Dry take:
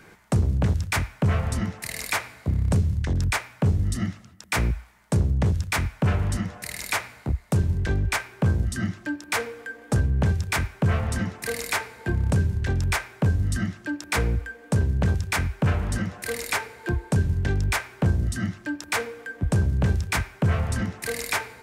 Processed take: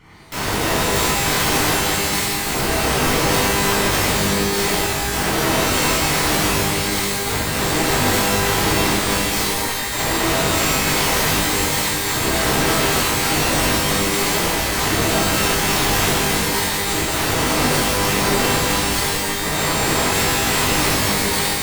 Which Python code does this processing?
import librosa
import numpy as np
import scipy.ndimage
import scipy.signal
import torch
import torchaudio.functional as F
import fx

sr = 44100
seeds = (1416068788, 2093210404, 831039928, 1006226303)

y = fx.lower_of_two(x, sr, delay_ms=0.92)
y = fx.high_shelf(y, sr, hz=4500.0, db=-10.5)
y = fx.echo_heads(y, sr, ms=116, heads='first and third', feedback_pct=64, wet_db=-19.0)
y = (np.mod(10.0 ** (25.5 / 20.0) * y + 1.0, 2.0) - 1.0) / 10.0 ** (25.5 / 20.0)
y = fx.rev_shimmer(y, sr, seeds[0], rt60_s=2.1, semitones=12, shimmer_db=-2, drr_db=-10.0)